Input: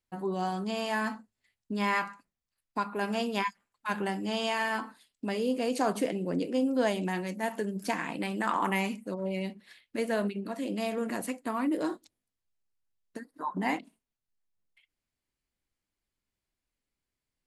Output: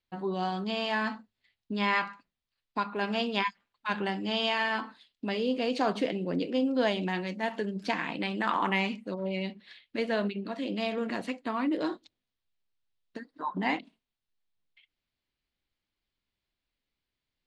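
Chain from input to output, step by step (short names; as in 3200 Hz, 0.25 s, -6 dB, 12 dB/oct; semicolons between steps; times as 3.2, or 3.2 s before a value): synth low-pass 3800 Hz, resonance Q 2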